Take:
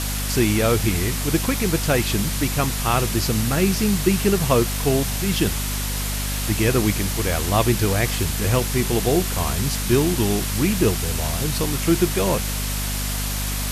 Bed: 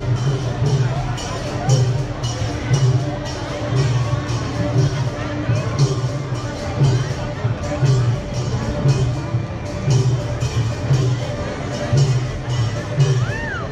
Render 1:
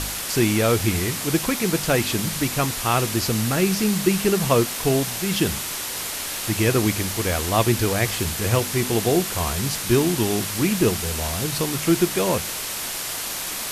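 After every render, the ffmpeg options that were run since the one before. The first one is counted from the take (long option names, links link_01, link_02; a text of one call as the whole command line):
ffmpeg -i in.wav -af "bandreject=frequency=50:width_type=h:width=4,bandreject=frequency=100:width_type=h:width=4,bandreject=frequency=150:width_type=h:width=4,bandreject=frequency=200:width_type=h:width=4,bandreject=frequency=250:width_type=h:width=4" out.wav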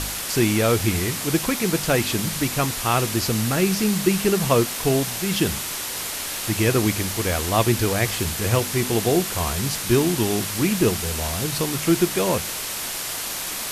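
ffmpeg -i in.wav -af anull out.wav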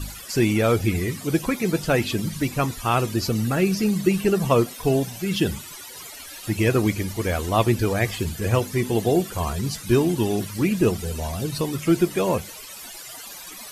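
ffmpeg -i in.wav -af "afftdn=noise_reduction=17:noise_floor=-29" out.wav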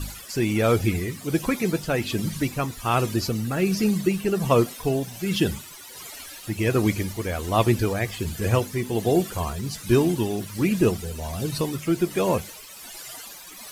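ffmpeg -i in.wav -af "tremolo=f=1.3:d=0.38,acrusher=bits=7:mix=0:aa=0.5" out.wav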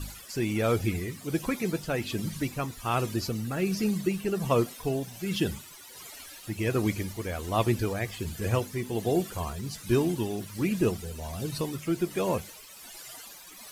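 ffmpeg -i in.wav -af "volume=-5.5dB" out.wav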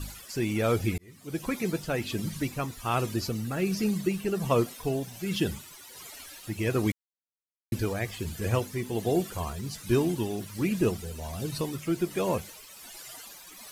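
ffmpeg -i in.wav -filter_complex "[0:a]asplit=4[link_01][link_02][link_03][link_04];[link_01]atrim=end=0.98,asetpts=PTS-STARTPTS,afade=type=out:start_time=0.976:duration=0.004:curve=hsin[link_05];[link_02]atrim=start=0.98:end=6.92,asetpts=PTS-STARTPTS,afade=type=in:duration=0.6,afade=type=out:start_time=5.936:duration=0.004:curve=hsin[link_06];[link_03]atrim=start=6.92:end=7.72,asetpts=PTS-STARTPTS,volume=0[link_07];[link_04]atrim=start=7.72,asetpts=PTS-STARTPTS,afade=type=in:duration=0.004:curve=hsin[link_08];[link_05][link_06][link_07][link_08]concat=n=4:v=0:a=1" out.wav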